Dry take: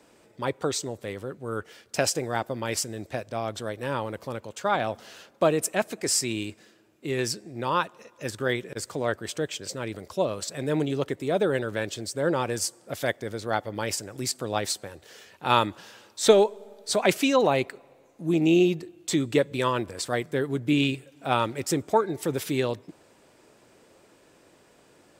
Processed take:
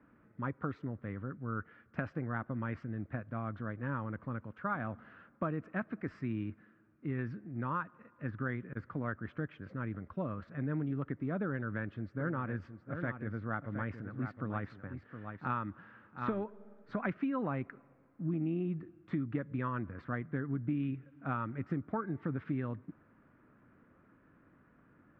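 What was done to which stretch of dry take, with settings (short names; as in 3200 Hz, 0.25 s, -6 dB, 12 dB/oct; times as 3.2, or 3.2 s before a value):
11.48–16.5 echo 0.716 s -10 dB
whole clip: LPF 1500 Hz 24 dB/oct; band shelf 580 Hz -13.5 dB; compressor, threshold -31 dBFS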